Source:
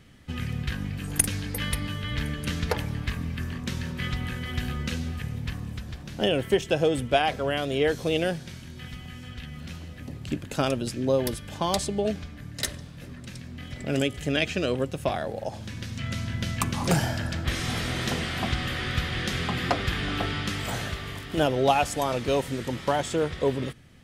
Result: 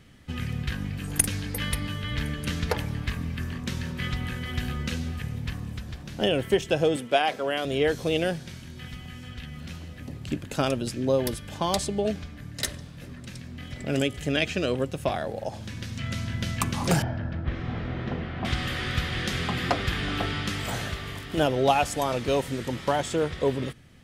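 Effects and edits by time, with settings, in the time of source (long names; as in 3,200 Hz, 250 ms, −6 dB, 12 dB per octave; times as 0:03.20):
0:06.96–0:07.65: high-pass filter 250 Hz
0:17.02–0:18.45: head-to-tape spacing loss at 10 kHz 45 dB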